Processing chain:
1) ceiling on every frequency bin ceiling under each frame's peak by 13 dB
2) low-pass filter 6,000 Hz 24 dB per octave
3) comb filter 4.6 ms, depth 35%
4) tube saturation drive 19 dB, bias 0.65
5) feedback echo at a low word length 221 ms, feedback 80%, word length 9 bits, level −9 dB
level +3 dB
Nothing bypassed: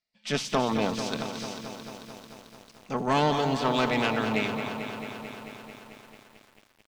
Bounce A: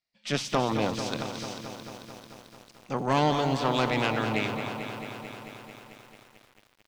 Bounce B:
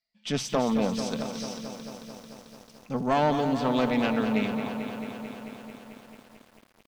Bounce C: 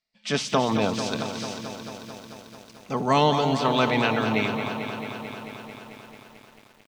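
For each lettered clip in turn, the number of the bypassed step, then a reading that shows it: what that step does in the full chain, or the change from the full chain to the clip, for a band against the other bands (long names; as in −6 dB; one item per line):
3, 125 Hz band +3.0 dB
1, 250 Hz band +4.0 dB
4, change in integrated loudness +3.5 LU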